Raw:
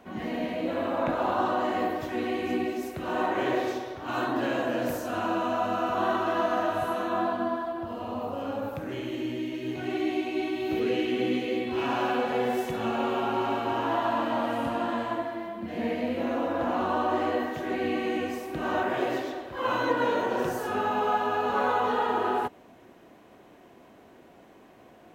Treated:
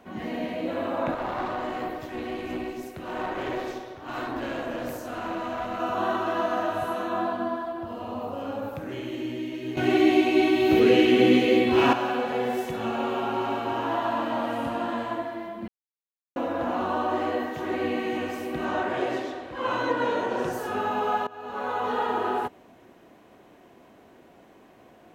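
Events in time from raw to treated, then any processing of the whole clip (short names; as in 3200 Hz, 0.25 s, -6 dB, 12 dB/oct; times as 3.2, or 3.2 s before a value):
1.14–5.8 tube stage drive 23 dB, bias 0.65
9.77–11.93 gain +9 dB
15.68–16.36 mute
17.02–18.14 echo throw 0.56 s, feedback 60%, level -8.5 dB
18.65–20.53 LPF 10000 Hz
21.27–22 fade in, from -21.5 dB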